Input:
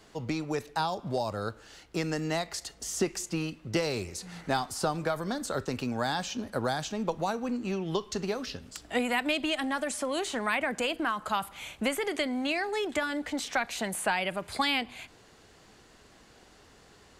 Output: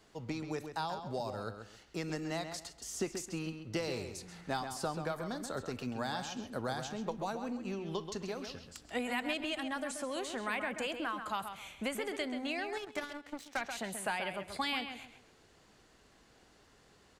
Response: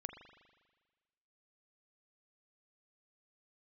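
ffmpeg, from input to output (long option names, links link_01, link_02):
-filter_complex "[0:a]asplit=2[link_01][link_02];[link_02]adelay=133,lowpass=frequency=4100:poles=1,volume=-7.5dB,asplit=2[link_03][link_04];[link_04]adelay=133,lowpass=frequency=4100:poles=1,volume=0.27,asplit=2[link_05][link_06];[link_06]adelay=133,lowpass=frequency=4100:poles=1,volume=0.27[link_07];[link_01][link_03][link_05][link_07]amix=inputs=4:normalize=0,asettb=1/sr,asplit=3[link_08][link_09][link_10];[link_08]atrim=end=12.774[link_11];[link_09]atrim=start=12.77:end=13.61,asetpts=PTS-STARTPTS,afade=type=in:duration=0.004:curve=qsin,afade=type=out:start_time=0.836:duration=0.004:curve=qsin,aeval=exprs='0.178*(cos(1*acos(clip(val(0)/0.178,-1,1)))-cos(1*PI/2))+0.00398*(cos(3*acos(clip(val(0)/0.178,-1,1)))-cos(3*PI/2))+0.02*(cos(7*acos(clip(val(0)/0.178,-1,1)))-cos(7*PI/2))':channel_layout=same[link_12];[link_10]atrim=start=13.606[link_13];[link_11][link_12]acrossfade=duration=0.004:curve1=hsin:curve2=qsin[link_14];[link_14][link_13]acrossfade=duration=0.004:curve1=qsin:curve2=hsin,volume=-7.5dB"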